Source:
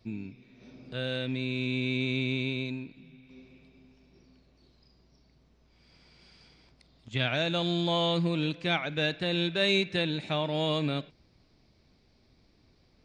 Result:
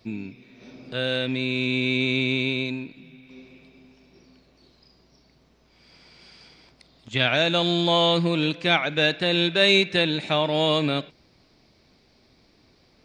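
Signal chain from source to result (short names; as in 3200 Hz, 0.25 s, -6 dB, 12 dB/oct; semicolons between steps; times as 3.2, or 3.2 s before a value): low shelf 160 Hz -10 dB; gain +8.5 dB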